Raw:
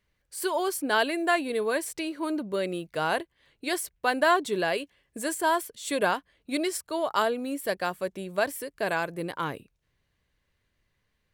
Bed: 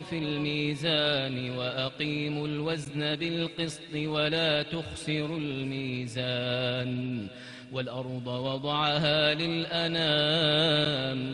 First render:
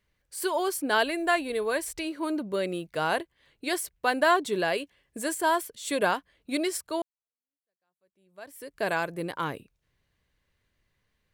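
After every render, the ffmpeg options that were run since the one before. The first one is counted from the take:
-filter_complex "[0:a]asplit=3[a][b][c];[a]afade=t=out:st=1.03:d=0.02[d];[b]asubboost=boost=11.5:cutoff=69,afade=t=in:st=1.03:d=0.02,afade=t=out:st=2.04:d=0.02[e];[c]afade=t=in:st=2.04:d=0.02[f];[d][e][f]amix=inputs=3:normalize=0,asplit=2[g][h];[g]atrim=end=7.02,asetpts=PTS-STARTPTS,afade=t=out:st=7.016:d=0.004:c=hsin[i];[h]atrim=start=7.02,asetpts=PTS-STARTPTS,afade=t=in:d=1.72:c=exp[j];[i][j]concat=n=2:v=0:a=1"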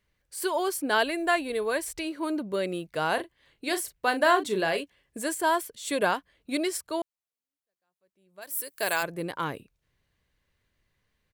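-filter_complex "[0:a]asplit=3[a][b][c];[a]afade=t=out:st=3.16:d=0.02[d];[b]asplit=2[e][f];[f]adelay=37,volume=-10dB[g];[e][g]amix=inputs=2:normalize=0,afade=t=in:st=3.16:d=0.02,afade=t=out:st=4.8:d=0.02[h];[c]afade=t=in:st=4.8:d=0.02[i];[d][h][i]amix=inputs=3:normalize=0,asplit=3[j][k][l];[j]afade=t=out:st=8.41:d=0.02[m];[k]aemphasis=mode=production:type=riaa,afade=t=in:st=8.41:d=0.02,afade=t=out:st=9.02:d=0.02[n];[l]afade=t=in:st=9.02:d=0.02[o];[m][n][o]amix=inputs=3:normalize=0"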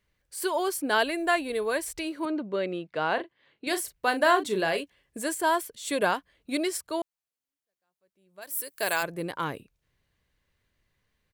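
-filter_complex "[0:a]asettb=1/sr,asplit=3[a][b][c];[a]atrim=end=2.254[d];[b]atrim=start=2.25:end=3.67,asetpts=PTS-STARTPTS,afade=t=in:d=0.004:c=qsin,afade=t=out:st=1.416:d=0.004:c=qsin,highpass=160,lowpass=3.6k[e];[c]atrim=start=3.666[f];[d][e]acrossfade=d=0.004:c1=hsin:c2=qsin[g];[g][f]acrossfade=d=0.004:c1=qsin:c2=hsin"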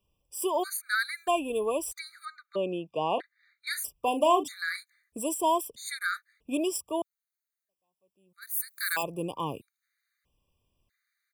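-filter_complex "[0:a]acrossover=split=110|6300[a][b][c];[c]crystalizer=i=0.5:c=0[d];[a][b][d]amix=inputs=3:normalize=0,afftfilt=real='re*gt(sin(2*PI*0.78*pts/sr)*(1-2*mod(floor(b*sr/1024/1200),2)),0)':imag='im*gt(sin(2*PI*0.78*pts/sr)*(1-2*mod(floor(b*sr/1024/1200),2)),0)':win_size=1024:overlap=0.75"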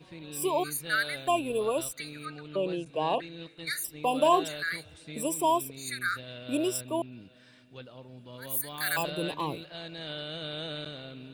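-filter_complex "[1:a]volume=-13dB[a];[0:a][a]amix=inputs=2:normalize=0"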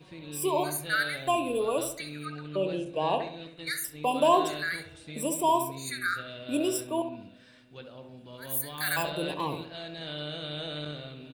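-filter_complex "[0:a]asplit=2[a][b];[b]adelay=21,volume=-13.5dB[c];[a][c]amix=inputs=2:normalize=0,asplit=2[d][e];[e]adelay=67,lowpass=f=1.7k:p=1,volume=-7dB,asplit=2[f][g];[g]adelay=67,lowpass=f=1.7k:p=1,volume=0.48,asplit=2[h][i];[i]adelay=67,lowpass=f=1.7k:p=1,volume=0.48,asplit=2[j][k];[k]adelay=67,lowpass=f=1.7k:p=1,volume=0.48,asplit=2[l][m];[m]adelay=67,lowpass=f=1.7k:p=1,volume=0.48,asplit=2[n][o];[o]adelay=67,lowpass=f=1.7k:p=1,volume=0.48[p];[f][h][j][l][n][p]amix=inputs=6:normalize=0[q];[d][q]amix=inputs=2:normalize=0"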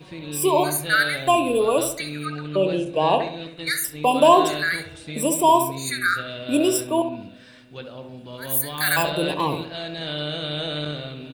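-af "volume=8.5dB,alimiter=limit=-3dB:level=0:latency=1"

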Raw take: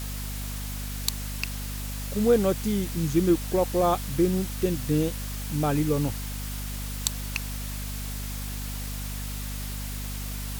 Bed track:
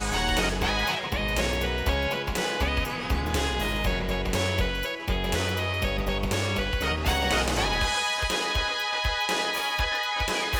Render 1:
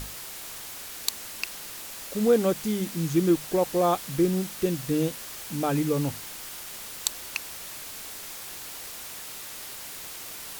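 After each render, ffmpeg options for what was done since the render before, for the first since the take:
-af "bandreject=f=50:t=h:w=6,bandreject=f=100:t=h:w=6,bandreject=f=150:t=h:w=6,bandreject=f=200:t=h:w=6,bandreject=f=250:t=h:w=6"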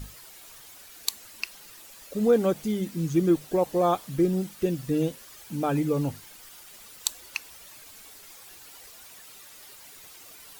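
-af "afftdn=nr=11:nf=-40"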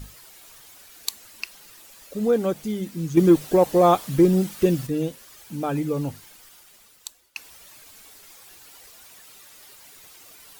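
-filter_complex "[0:a]asettb=1/sr,asplit=3[a][b][c];[a]atrim=end=3.174[d];[b]atrim=start=3.17:end=4.87,asetpts=PTS-STARTPTS,afade=t=in:d=0.004:c=qsin,afade=t=out:st=1.696:d=0.004:c=qsin,acontrast=85[e];[c]atrim=start=4.866[f];[d][e]acrossfade=d=0.004:c1=hsin:c2=qsin[g];[g][f]acrossfade=d=0.004:c1=qsin:c2=hsin,asplit=2[h][i];[h]atrim=end=7.36,asetpts=PTS-STARTPTS,afade=t=out:st=6.24:d=1.12:silence=0.0841395[j];[i]atrim=start=7.36,asetpts=PTS-STARTPTS,afade=t=in:d=0.004:c=hsin:silence=0.0841395[k];[j][k]concat=n=2:v=0:a=1"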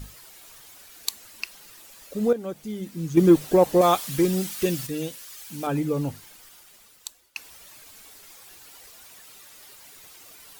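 -filter_complex "[0:a]asettb=1/sr,asplit=3[a][b][c];[a]atrim=end=3.814[d];[b]atrim=start=3.81:end=5.67,asetpts=PTS-STARTPTS,afade=t=in:d=0.004:c=qsin,afade=t=out:st=1.856:d=0.004:c=qsin,tiltshelf=f=1.3k:g=-6[e];[c]atrim=start=5.666[f];[d][e]acrossfade=d=0.004:c1=hsin:c2=qsin[g];[g][f]acrossfade=d=0.004:c1=qsin:c2=hsin,asplit=2[h][i];[h]atrim=end=2.33,asetpts=PTS-STARTPTS,afade=t=out:st=2.326:d=0.004:c=hsin:silence=0.251189[j];[i]atrim=start=2.33,asetpts=PTS-STARTPTS,afade=t=in:d=0.97:silence=0.251189[k];[j][k]concat=n=2:v=0:a=1"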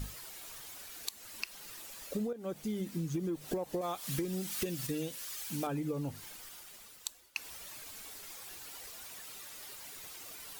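-af "alimiter=limit=-17dB:level=0:latency=1:release=274,acompressor=threshold=-32dB:ratio=16"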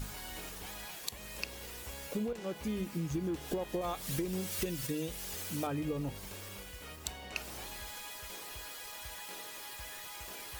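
-filter_complex "[1:a]volume=-22dB[a];[0:a][a]amix=inputs=2:normalize=0"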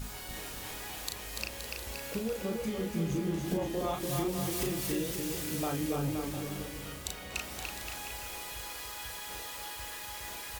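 -filter_complex "[0:a]asplit=2[a][b];[b]adelay=36,volume=-4dB[c];[a][c]amix=inputs=2:normalize=0,aecho=1:1:290|522|707.6|856.1|974.9:0.631|0.398|0.251|0.158|0.1"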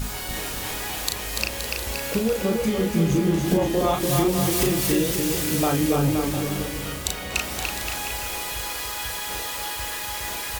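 -af "volume=11.5dB"

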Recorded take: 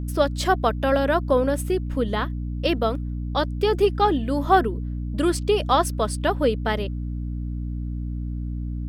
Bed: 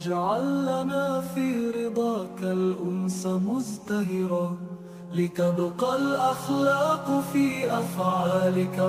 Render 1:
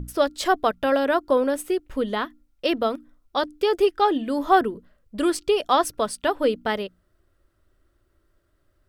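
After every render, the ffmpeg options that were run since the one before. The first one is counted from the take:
-af "bandreject=f=60:t=h:w=6,bandreject=f=120:t=h:w=6,bandreject=f=180:t=h:w=6,bandreject=f=240:t=h:w=6,bandreject=f=300:t=h:w=6"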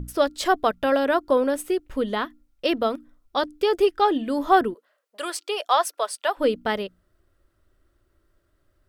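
-filter_complex "[0:a]asplit=3[a][b][c];[a]afade=t=out:st=4.73:d=0.02[d];[b]highpass=f=530:w=0.5412,highpass=f=530:w=1.3066,afade=t=in:st=4.73:d=0.02,afade=t=out:st=6.37:d=0.02[e];[c]afade=t=in:st=6.37:d=0.02[f];[d][e][f]amix=inputs=3:normalize=0"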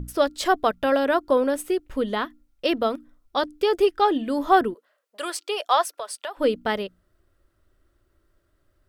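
-filter_complex "[0:a]asettb=1/sr,asplit=3[a][b][c];[a]atrim=end=5.834[d];[b]atrim=start=5.83:end=6.39,asetpts=PTS-STARTPTS,afade=t=in:d=0.004:c=qsin,afade=t=out:st=0.556:d=0.004:c=qsin,acompressor=threshold=-28dB:ratio=6:attack=3.2:release=140:knee=1:detection=peak[e];[c]atrim=start=6.386[f];[d][e]acrossfade=d=0.004:c1=hsin:c2=qsin[g];[g][f]acrossfade=d=0.004:c1=qsin:c2=hsin"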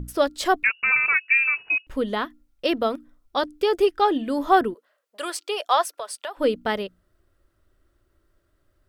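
-filter_complex "[0:a]asettb=1/sr,asplit=3[a][b][c];[a]atrim=end=0.634[d];[b]atrim=start=0.63:end=1.87,asetpts=PTS-STARTPTS,afade=t=in:d=0.004:c=qsin,afade=t=out:st=1.236:d=0.004:c=qsin,lowpass=f=2.5k:t=q:w=0.5098,lowpass=f=2.5k:t=q:w=0.6013,lowpass=f=2.5k:t=q:w=0.9,lowpass=f=2.5k:t=q:w=2.563,afreqshift=-2900[e];[c]atrim=start=1.866[f];[d][e]acrossfade=d=0.004:c1=hsin:c2=qsin[g];[g][f]acrossfade=d=0.004:c1=qsin:c2=hsin"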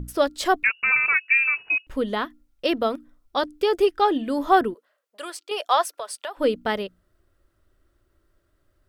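-filter_complex "[0:a]asplit=2[a][b];[a]atrim=end=5.51,asetpts=PTS-STARTPTS,afade=t=out:st=4.69:d=0.82:silence=0.398107[c];[b]atrim=start=5.51,asetpts=PTS-STARTPTS,afade=t=in:d=0.004:c=hsin:silence=0.398107[d];[c][d]concat=n=2:v=0:a=1"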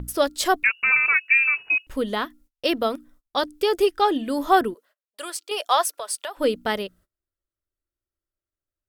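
-af "aemphasis=mode=production:type=cd,agate=range=-26dB:threshold=-52dB:ratio=16:detection=peak"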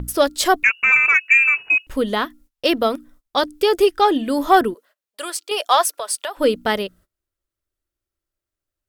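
-af "acontrast=23"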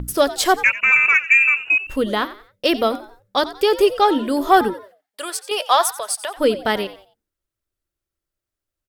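-filter_complex "[0:a]asplit=4[a][b][c][d];[b]adelay=89,afreqshift=92,volume=-15.5dB[e];[c]adelay=178,afreqshift=184,volume=-25.1dB[f];[d]adelay=267,afreqshift=276,volume=-34.8dB[g];[a][e][f][g]amix=inputs=4:normalize=0"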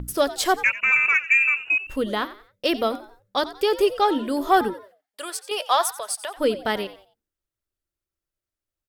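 -af "volume=-4.5dB"

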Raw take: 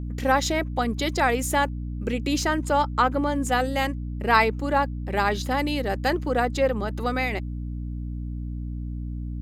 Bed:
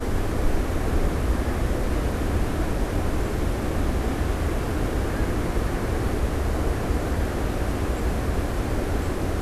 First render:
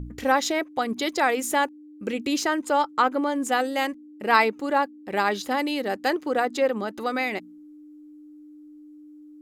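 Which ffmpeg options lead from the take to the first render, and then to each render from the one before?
-af "bandreject=f=60:t=h:w=4,bandreject=f=120:t=h:w=4,bandreject=f=180:t=h:w=4,bandreject=f=240:t=h:w=4"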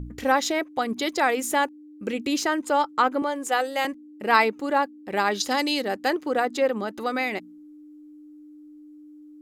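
-filter_complex "[0:a]asettb=1/sr,asplit=3[a][b][c];[a]atrim=end=3.224[d];[b]atrim=start=3.22:end=3.85,asetpts=PTS-STARTPTS,afade=t=in:d=0.004:c=qsin,afade=t=out:st=0.626:d=0.004:c=qsin,highpass=f=330:w=0.5412,highpass=f=330:w=1.3066[e];[c]atrim=start=3.846[f];[d][e]acrossfade=d=0.004:c1=hsin:c2=qsin[g];[g][f]acrossfade=d=0.004:c1=qsin:c2=hsin,asettb=1/sr,asplit=3[h][i][j];[h]atrim=end=5.404[k];[i]atrim=start=5.4:end=5.83,asetpts=PTS-STARTPTS,afade=t=in:d=0.004:c=qsin,afade=t=out:st=0.426:d=0.004:c=qsin,equalizer=f=5.6k:t=o:w=1.4:g=12[l];[j]atrim=start=5.826[m];[k][l]acrossfade=d=0.004:c1=hsin:c2=qsin[n];[n][m]acrossfade=d=0.004:c1=qsin:c2=hsin"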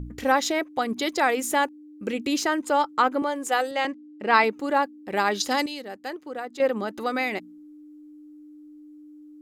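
-filter_complex "[0:a]asettb=1/sr,asplit=3[a][b][c];[a]atrim=end=3.714[d];[b]atrim=start=3.71:end=4.44,asetpts=PTS-STARTPTS,afade=t=in:d=0.004:c=qsin,afade=t=out:st=0.726:d=0.004:c=qsin,highpass=110,lowpass=5.3k[e];[c]atrim=start=4.436[f];[d][e]acrossfade=d=0.004:c1=hsin:c2=qsin[g];[g][f]acrossfade=d=0.004:c1=qsin:c2=hsin,asplit=3[h][i][j];[h]atrim=end=5.662[k];[i]atrim=start=5.658:end=6.602,asetpts=PTS-STARTPTS,volume=-10dB[l];[j]atrim=start=6.598[m];[k][l]acrossfade=d=0.004:c1=hsin:c2=hsin[n];[n][m]acrossfade=d=0.004:c1=hsin:c2=hsin"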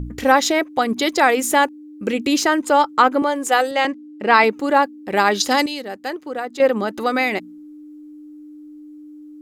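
-af "volume=7dB,alimiter=limit=-1dB:level=0:latency=1"

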